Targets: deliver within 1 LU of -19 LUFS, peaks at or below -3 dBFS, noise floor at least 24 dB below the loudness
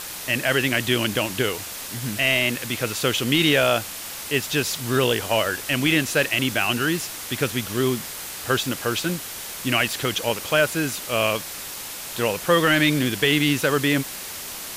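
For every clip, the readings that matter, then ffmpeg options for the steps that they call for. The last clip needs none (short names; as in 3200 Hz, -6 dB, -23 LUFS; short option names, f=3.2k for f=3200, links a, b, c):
noise floor -34 dBFS; noise floor target -46 dBFS; loudness -22.0 LUFS; peak -7.5 dBFS; loudness target -19.0 LUFS
-> -af "afftdn=nr=12:nf=-34"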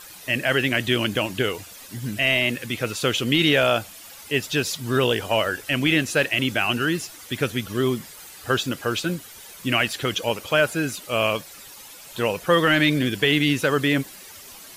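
noise floor -43 dBFS; noise floor target -47 dBFS
-> -af "afftdn=nr=6:nf=-43"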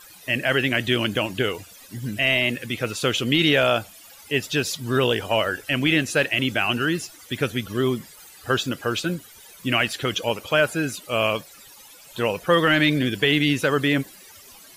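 noise floor -47 dBFS; loudness -22.5 LUFS; peak -7.0 dBFS; loudness target -19.0 LUFS
-> -af "volume=3.5dB"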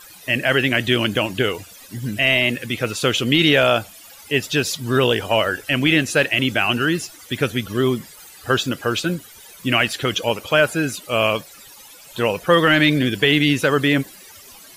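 loudness -19.0 LUFS; peak -3.5 dBFS; noise floor -44 dBFS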